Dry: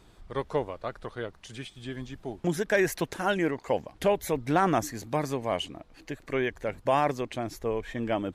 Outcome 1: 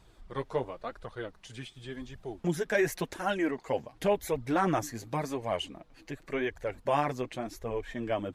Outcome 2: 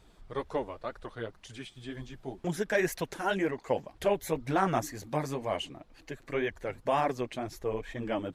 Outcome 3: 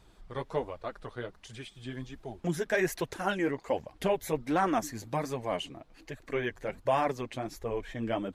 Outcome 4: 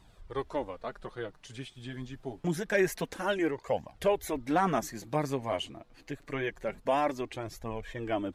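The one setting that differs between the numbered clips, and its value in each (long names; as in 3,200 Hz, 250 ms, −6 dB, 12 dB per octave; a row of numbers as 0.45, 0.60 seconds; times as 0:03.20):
flanger, speed: 0.91, 2, 1.3, 0.26 Hertz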